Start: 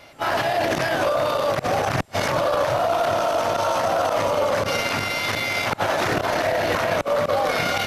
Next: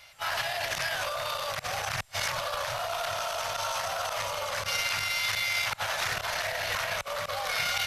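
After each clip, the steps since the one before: passive tone stack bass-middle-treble 10-0-10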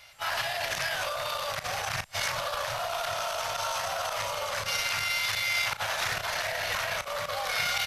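doubler 36 ms -12 dB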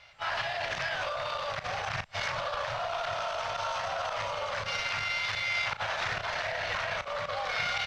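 air absorption 160 m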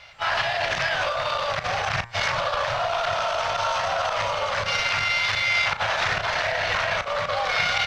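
de-hum 117.7 Hz, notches 20; gain +8.5 dB

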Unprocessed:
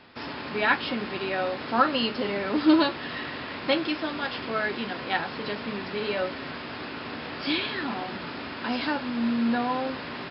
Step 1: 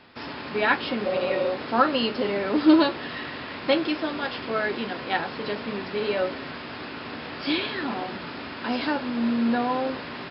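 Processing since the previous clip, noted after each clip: spectral repair 1.08–1.46, 270–1800 Hz after; dynamic EQ 450 Hz, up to +4 dB, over -36 dBFS, Q 0.9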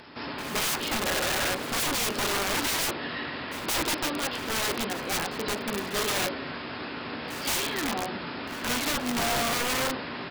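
wrapped overs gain 22.5 dB; upward compressor, threshold -50 dBFS; pre-echo 0.17 s -15 dB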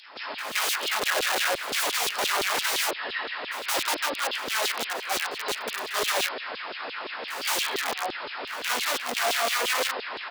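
LFO high-pass saw down 5.8 Hz 370–3900 Hz

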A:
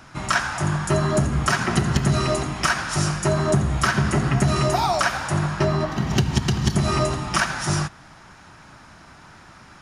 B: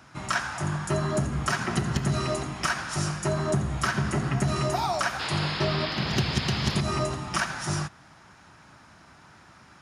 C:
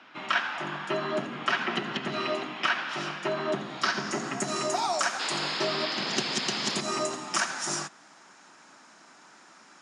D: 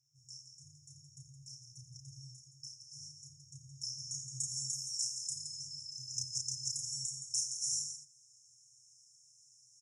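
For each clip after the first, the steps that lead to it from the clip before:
HPF 59 Hz; painted sound noise, 5.19–6.81, 210–5300 Hz -27 dBFS; gain -6 dB
HPF 230 Hz 24 dB/oct; low-pass sweep 3100 Hz -> 7600 Hz, 3.49–4.36; gain -1 dB
FFT band-reject 150–5200 Hz; on a send: loudspeakers at several distances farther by 11 m -3 dB, 58 m -8 dB; on the sum: gain -3 dB

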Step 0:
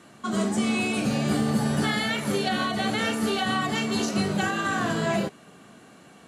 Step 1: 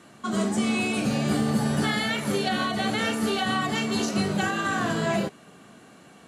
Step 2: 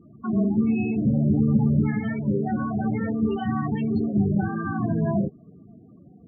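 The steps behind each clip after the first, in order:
nothing audible
RIAA curve playback; loudest bins only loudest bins 16; gain -3.5 dB

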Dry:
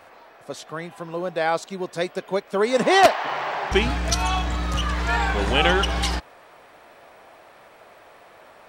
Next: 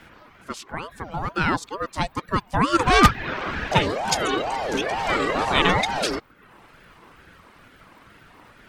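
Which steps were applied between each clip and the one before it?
tape echo 65 ms, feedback 89%, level -20.5 dB, low-pass 1600 Hz; reverb removal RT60 0.64 s; ring modulator with a swept carrier 600 Hz, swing 45%, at 2.2 Hz; gain +3.5 dB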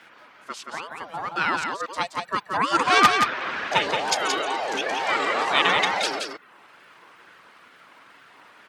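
weighting filter A; on a send: echo 0.175 s -5 dB; on the sum: gain -1 dB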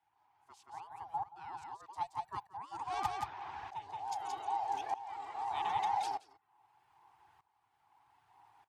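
EQ curve 110 Hz 0 dB, 210 Hz -23 dB, 380 Hz -16 dB, 570 Hz -29 dB, 810 Hz +3 dB, 1300 Hz -22 dB, 4100 Hz -19 dB, 6200 Hz -16 dB, 12000 Hz -12 dB; tremolo saw up 0.81 Hz, depth 85%; gain -2 dB

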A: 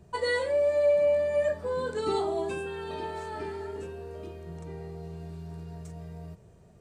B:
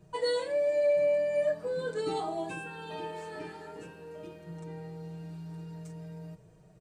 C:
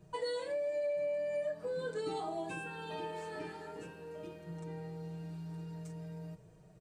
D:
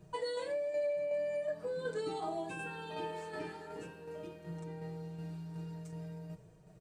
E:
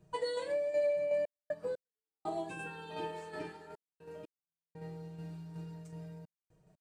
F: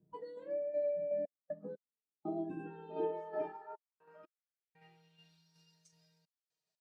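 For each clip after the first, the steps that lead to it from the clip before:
comb 6.4 ms, depth 98%; gain -5 dB
compressor 3:1, threshold -34 dBFS, peak gain reduction 8.5 dB; gain -1.5 dB
tremolo saw down 2.7 Hz, depth 40%; gain +2 dB
step gate "xxxxx.x..x" 60 bpm -60 dB; upward expander 1.5:1, over -53 dBFS; gain +4 dB
spectral noise reduction 10 dB; band-pass sweep 250 Hz -> 4600 Hz, 2.43–5.52; gain +9.5 dB

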